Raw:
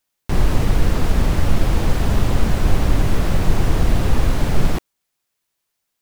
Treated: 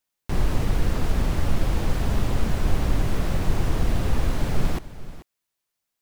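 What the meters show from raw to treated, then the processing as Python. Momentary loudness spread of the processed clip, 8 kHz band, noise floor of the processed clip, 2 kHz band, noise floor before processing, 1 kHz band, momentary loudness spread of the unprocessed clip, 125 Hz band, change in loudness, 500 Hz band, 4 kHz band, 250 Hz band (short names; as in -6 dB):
5 LU, -6.0 dB, -82 dBFS, -6.0 dB, -76 dBFS, -6.0 dB, 2 LU, -6.0 dB, -6.0 dB, -6.0 dB, -6.0 dB, -6.0 dB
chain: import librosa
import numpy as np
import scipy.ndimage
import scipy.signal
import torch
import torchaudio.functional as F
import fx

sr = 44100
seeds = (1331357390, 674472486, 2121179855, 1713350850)

y = x + 10.0 ** (-15.5 / 20.0) * np.pad(x, (int(437 * sr / 1000.0), 0))[:len(x)]
y = F.gain(torch.from_numpy(y), -6.0).numpy()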